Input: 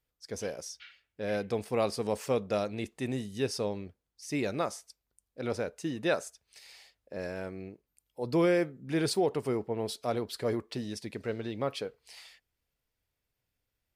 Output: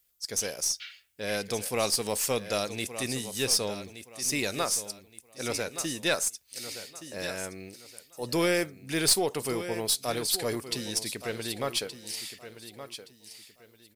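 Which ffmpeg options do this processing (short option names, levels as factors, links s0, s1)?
-af "crystalizer=i=8:c=0,aecho=1:1:1171|2342|3513:0.251|0.0728|0.0211,aeval=exprs='(tanh(4.47*val(0)+0.25)-tanh(0.25))/4.47':c=same,volume=0.841"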